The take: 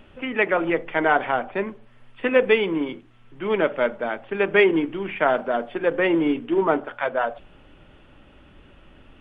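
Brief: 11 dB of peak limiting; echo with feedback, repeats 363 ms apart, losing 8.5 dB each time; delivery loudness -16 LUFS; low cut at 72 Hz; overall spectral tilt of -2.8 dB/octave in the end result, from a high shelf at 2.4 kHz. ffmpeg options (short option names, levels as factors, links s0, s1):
-af "highpass=72,highshelf=f=2400:g=8,alimiter=limit=0.237:level=0:latency=1,aecho=1:1:363|726|1089|1452:0.376|0.143|0.0543|0.0206,volume=2.51"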